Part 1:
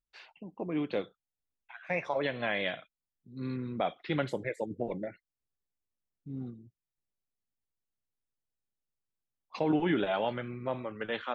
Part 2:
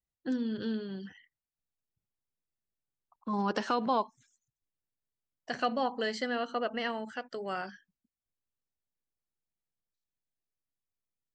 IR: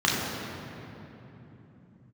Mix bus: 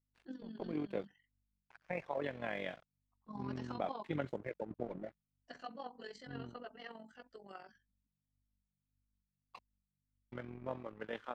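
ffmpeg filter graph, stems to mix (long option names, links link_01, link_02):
-filter_complex "[0:a]aeval=exprs='sgn(val(0))*max(abs(val(0))-0.00376,0)':channel_layout=same,lowpass=frequency=1600:poles=1,volume=-3dB,asplit=3[link_01][link_02][link_03];[link_01]atrim=end=9.59,asetpts=PTS-STARTPTS,afade=type=out:start_time=9.586:duration=0.004:curve=hsin[link_04];[link_02]atrim=start=9.59:end=10.32,asetpts=PTS-STARTPTS,volume=0[link_05];[link_03]atrim=start=10.32,asetpts=PTS-STARTPTS,afade=type=in:duration=0.004:curve=hsin[link_06];[link_04][link_05][link_06]concat=n=3:v=0:a=1[link_07];[1:a]tremolo=f=20:d=0.621,aeval=exprs='val(0)+0.000316*(sin(2*PI*50*n/s)+sin(2*PI*2*50*n/s)/2+sin(2*PI*3*50*n/s)/3+sin(2*PI*4*50*n/s)/4+sin(2*PI*5*50*n/s)/5)':channel_layout=same,asplit=2[link_08][link_09];[link_09]adelay=10.2,afreqshift=1.7[link_10];[link_08][link_10]amix=inputs=2:normalize=1,volume=-8dB[link_11];[link_07][link_11]amix=inputs=2:normalize=0,tremolo=f=45:d=0.621"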